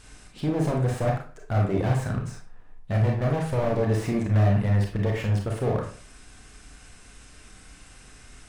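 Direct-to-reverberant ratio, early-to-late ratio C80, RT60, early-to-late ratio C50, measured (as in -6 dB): 0.0 dB, 10.5 dB, 0.40 s, 5.0 dB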